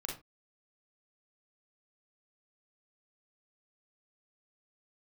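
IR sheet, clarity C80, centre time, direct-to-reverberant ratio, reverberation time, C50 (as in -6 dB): 13.5 dB, 32 ms, -1.5 dB, not exponential, 5.0 dB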